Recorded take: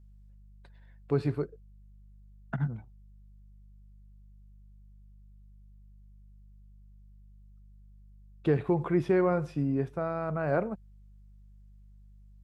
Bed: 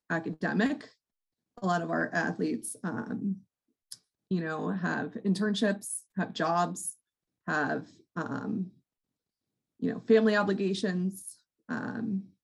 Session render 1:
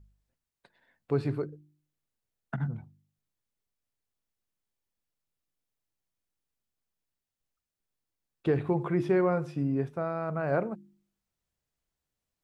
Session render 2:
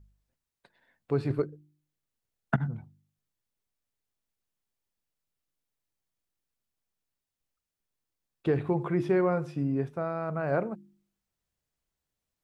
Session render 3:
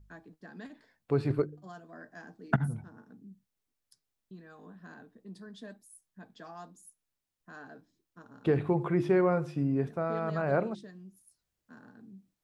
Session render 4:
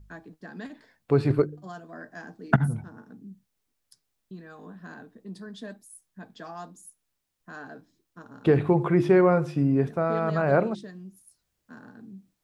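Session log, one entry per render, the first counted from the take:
de-hum 50 Hz, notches 7
1.30–2.61 s: transient shaper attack +10 dB, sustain -1 dB
add bed -19 dB
trim +6.5 dB

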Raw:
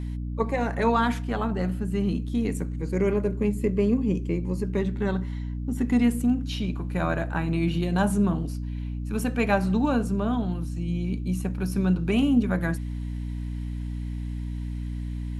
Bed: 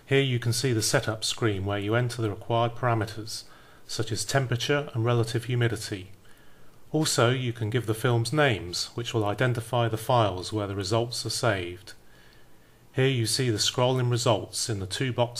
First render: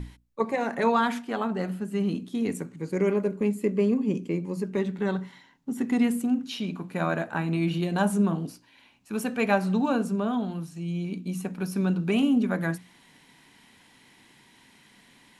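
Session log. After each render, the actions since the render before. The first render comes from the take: hum notches 60/120/180/240/300 Hz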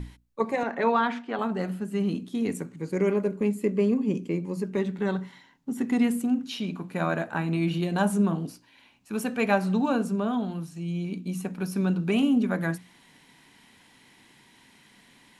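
0.63–1.39 s: band-pass 210–3700 Hz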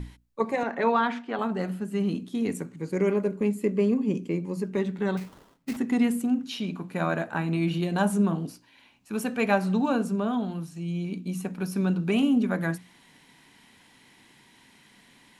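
5.17–5.77 s: sample-rate reducer 2.3 kHz, jitter 20%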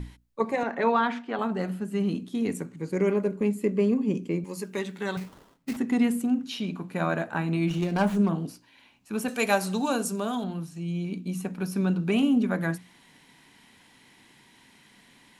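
4.44–5.17 s: tilt EQ +3 dB/octave; 7.69–8.29 s: sliding maximum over 5 samples; 9.28–10.44 s: tone controls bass -7 dB, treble +15 dB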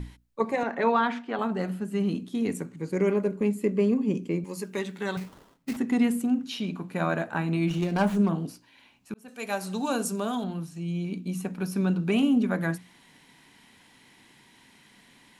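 9.14–10.03 s: fade in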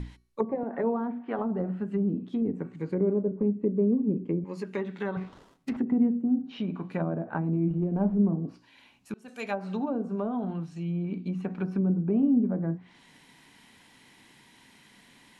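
de-hum 374.2 Hz, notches 35; low-pass that closes with the level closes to 480 Hz, closed at -23.5 dBFS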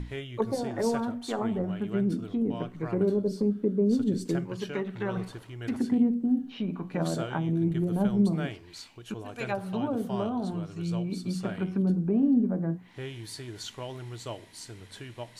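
add bed -15 dB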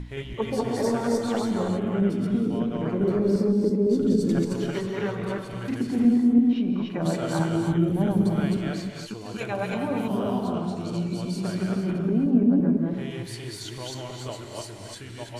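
chunks repeated in reverse 168 ms, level 0 dB; gated-style reverb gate 350 ms rising, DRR 4 dB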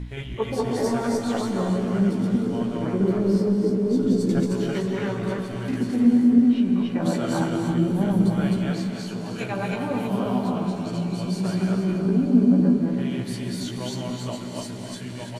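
doubling 16 ms -4.5 dB; echo that smears into a reverb 548 ms, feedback 73%, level -14 dB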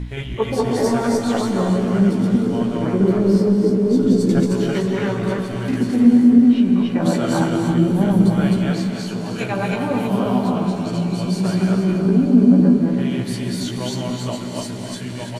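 trim +5.5 dB; peak limiter -3 dBFS, peak gain reduction 2 dB

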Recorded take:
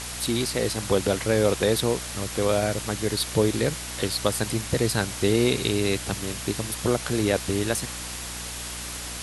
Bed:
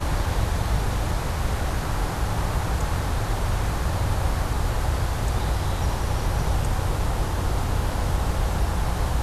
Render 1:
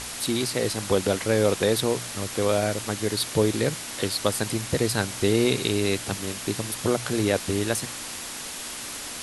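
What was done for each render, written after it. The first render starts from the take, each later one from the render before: de-hum 60 Hz, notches 3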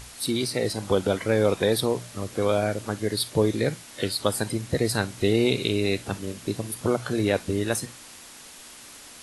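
noise print and reduce 10 dB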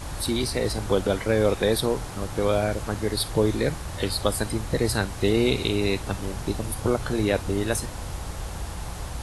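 add bed -10 dB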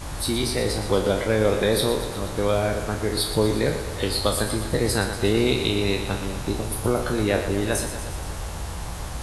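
spectral sustain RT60 0.36 s; thinning echo 119 ms, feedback 66%, high-pass 180 Hz, level -9.5 dB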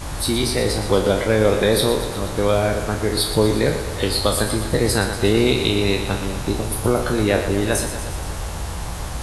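trim +4 dB; peak limiter -3 dBFS, peak gain reduction 1 dB

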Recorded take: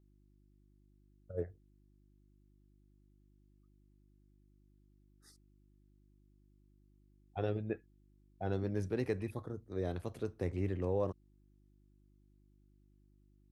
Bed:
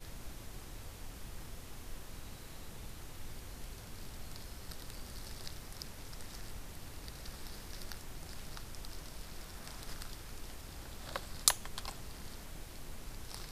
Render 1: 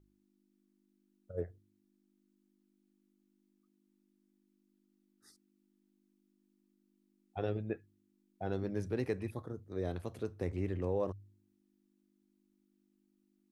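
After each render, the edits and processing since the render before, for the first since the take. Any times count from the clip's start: de-hum 50 Hz, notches 3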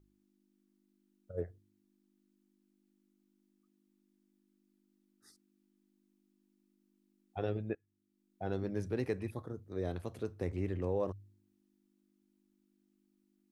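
7.75–8.46 s: fade in, from -22 dB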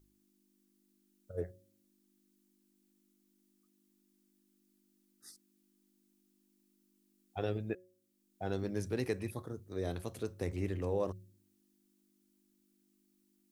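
treble shelf 4 kHz +12 dB; de-hum 183 Hz, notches 3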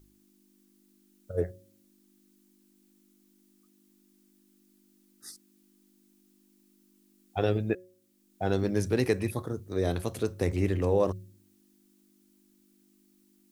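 trim +9 dB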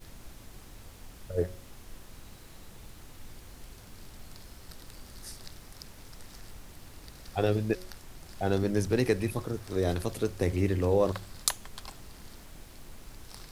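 add bed -1 dB

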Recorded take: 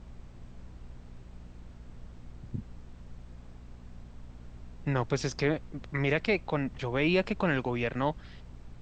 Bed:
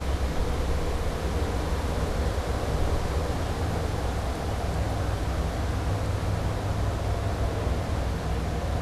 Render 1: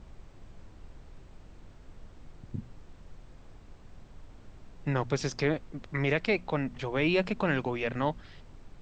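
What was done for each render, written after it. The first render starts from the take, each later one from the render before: de-hum 60 Hz, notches 4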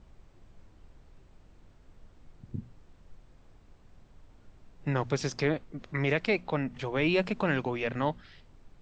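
noise print and reduce 6 dB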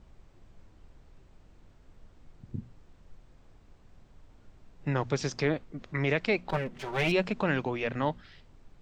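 6.49–7.12 s: comb filter that takes the minimum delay 5.2 ms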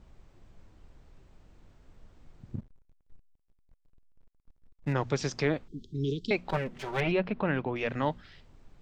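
2.55–4.93 s: hysteresis with a dead band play -41.5 dBFS; 5.68–6.31 s: Chebyshev band-stop 420–3200 Hz, order 5; 7.00–7.76 s: distance through air 320 m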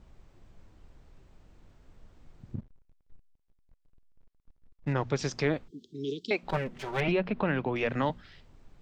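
2.54–5.19 s: distance through air 62 m; 5.70–6.43 s: high-pass 270 Hz; 7.08–8.10 s: three bands compressed up and down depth 70%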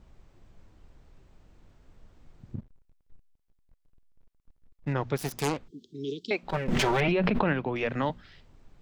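5.16–5.66 s: self-modulated delay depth 0.66 ms; 6.68–7.53 s: level flattener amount 100%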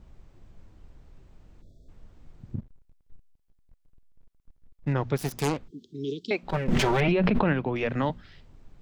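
1.62–1.89 s: spectral selection erased 700–3300 Hz; bass shelf 330 Hz +4.5 dB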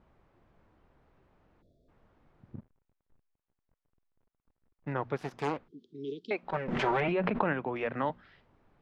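low-pass 1.3 kHz 12 dB/octave; tilt EQ +4 dB/octave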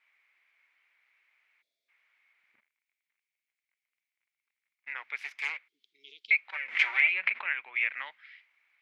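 resonant high-pass 2.2 kHz, resonance Q 7.4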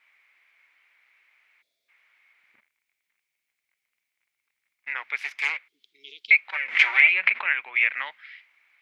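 trim +7.5 dB; peak limiter -3 dBFS, peak gain reduction 1 dB

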